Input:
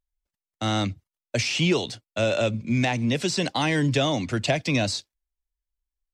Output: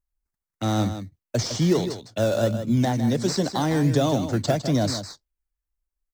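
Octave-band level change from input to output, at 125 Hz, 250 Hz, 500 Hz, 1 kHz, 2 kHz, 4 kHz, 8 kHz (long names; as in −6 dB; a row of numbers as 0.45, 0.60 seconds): +3.0, +3.0, +2.0, +0.5, −8.0, −4.5, +0.5 decibels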